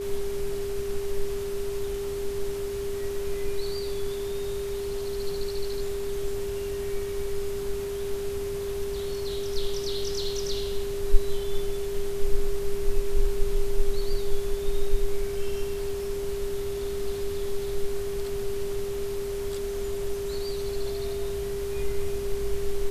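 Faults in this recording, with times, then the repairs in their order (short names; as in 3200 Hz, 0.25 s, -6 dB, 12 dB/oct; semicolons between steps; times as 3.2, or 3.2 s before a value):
tone 400 Hz -29 dBFS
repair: notch 400 Hz, Q 30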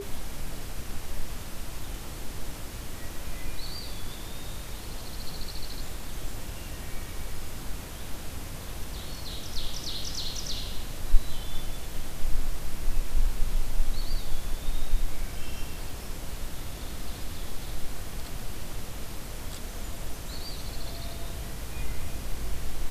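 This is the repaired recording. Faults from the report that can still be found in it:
none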